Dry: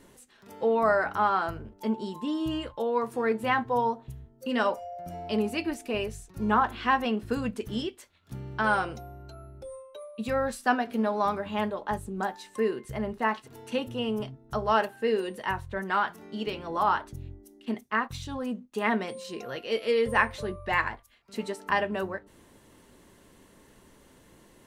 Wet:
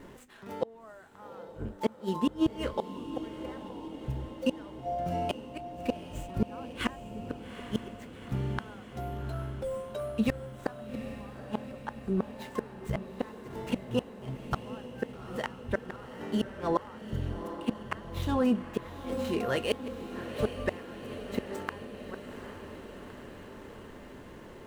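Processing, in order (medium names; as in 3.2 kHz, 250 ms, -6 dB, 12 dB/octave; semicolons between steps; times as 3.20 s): median filter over 9 samples; inverted gate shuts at -23 dBFS, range -34 dB; echo that smears into a reverb 813 ms, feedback 68%, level -10 dB; trim +7 dB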